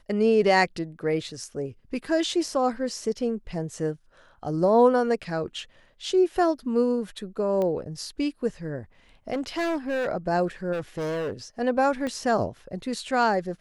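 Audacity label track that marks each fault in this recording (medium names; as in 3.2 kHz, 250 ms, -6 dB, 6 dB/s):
7.620000	7.620000	pop -18 dBFS
9.320000	10.080000	clipped -23.5 dBFS
10.720000	11.330000	clipped -26.5 dBFS
12.070000	12.070000	pop -19 dBFS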